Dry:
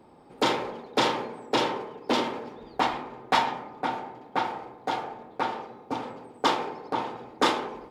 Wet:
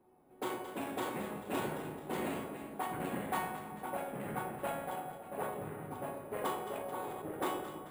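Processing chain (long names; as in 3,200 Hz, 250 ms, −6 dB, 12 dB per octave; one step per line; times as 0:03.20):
tuned comb filter 370 Hz, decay 0.55 s, mix 90%
delay that swaps between a low-pass and a high-pass 109 ms, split 1,100 Hz, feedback 70%, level −8 dB
delay with pitch and tempo change per echo 200 ms, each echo −5 semitones, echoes 3
high-frequency loss of the air 270 metres
bad sample-rate conversion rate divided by 4×, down none, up hold
0:06.66–0:07.22: level that may fall only so fast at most 22 dB per second
level +3.5 dB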